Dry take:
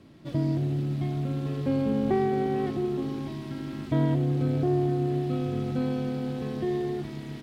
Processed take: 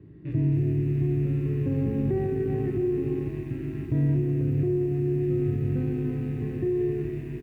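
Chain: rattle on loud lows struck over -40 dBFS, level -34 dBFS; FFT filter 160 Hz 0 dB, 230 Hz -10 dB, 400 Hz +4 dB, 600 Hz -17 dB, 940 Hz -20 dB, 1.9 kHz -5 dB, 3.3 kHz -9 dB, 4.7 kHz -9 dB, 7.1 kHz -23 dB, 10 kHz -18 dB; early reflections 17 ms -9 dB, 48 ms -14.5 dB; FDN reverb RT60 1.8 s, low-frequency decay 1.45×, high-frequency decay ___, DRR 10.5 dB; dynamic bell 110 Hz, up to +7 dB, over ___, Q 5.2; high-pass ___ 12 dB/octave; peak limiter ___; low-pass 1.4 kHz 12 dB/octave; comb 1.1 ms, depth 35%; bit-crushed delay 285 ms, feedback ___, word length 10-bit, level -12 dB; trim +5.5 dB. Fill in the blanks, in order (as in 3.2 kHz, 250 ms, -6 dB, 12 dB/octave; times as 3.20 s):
0.35×, -51 dBFS, 42 Hz, -23 dBFS, 55%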